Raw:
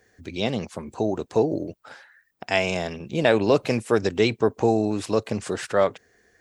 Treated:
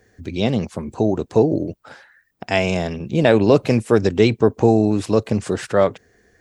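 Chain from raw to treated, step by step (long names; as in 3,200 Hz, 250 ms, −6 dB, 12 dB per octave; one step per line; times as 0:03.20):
low-shelf EQ 380 Hz +8.5 dB
level +1.5 dB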